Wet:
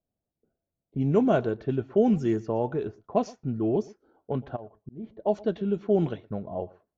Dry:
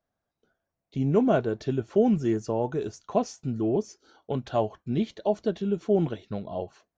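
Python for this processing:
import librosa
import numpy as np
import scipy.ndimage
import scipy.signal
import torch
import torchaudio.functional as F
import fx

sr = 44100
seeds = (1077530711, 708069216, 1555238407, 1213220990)

y = fx.auto_swell(x, sr, attack_ms=518.0, at=(4.55, 5.03), fade=0.02)
y = y + 10.0 ** (-22.5 / 20.0) * np.pad(y, (int(118 * sr / 1000.0), 0))[:len(y)]
y = fx.env_lowpass(y, sr, base_hz=470.0, full_db=-18.5)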